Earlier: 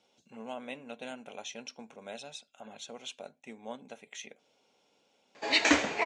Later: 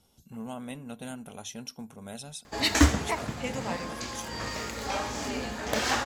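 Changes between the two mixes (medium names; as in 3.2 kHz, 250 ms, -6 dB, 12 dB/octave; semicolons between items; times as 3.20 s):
background: entry -2.90 s; master: remove cabinet simulation 350–6400 Hz, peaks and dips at 550 Hz +4 dB, 1.2 kHz -4 dB, 2.4 kHz +7 dB, 5.2 kHz -5 dB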